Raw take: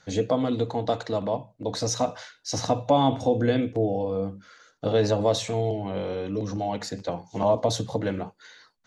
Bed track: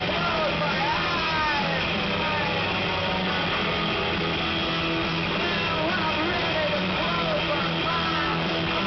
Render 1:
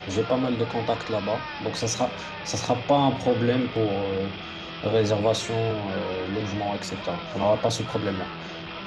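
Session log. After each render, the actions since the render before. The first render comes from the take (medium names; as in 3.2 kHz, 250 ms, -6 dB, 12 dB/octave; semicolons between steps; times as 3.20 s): add bed track -11 dB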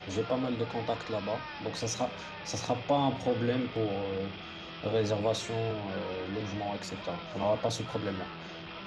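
trim -7 dB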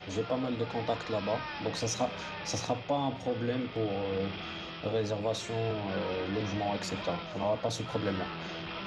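gain riding within 4 dB 0.5 s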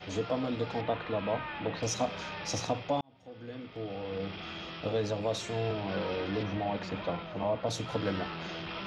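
0.81–1.83 s: low-pass 3.3 kHz 24 dB/octave; 3.01–4.80 s: fade in; 6.43–7.67 s: distance through air 210 m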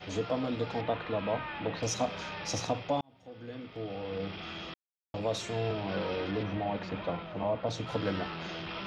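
4.74–5.14 s: mute; 6.31–7.87 s: distance through air 100 m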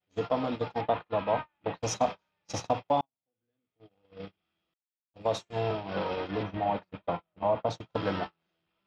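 gate -33 dBFS, range -41 dB; dynamic bell 880 Hz, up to +8 dB, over -47 dBFS, Q 1.4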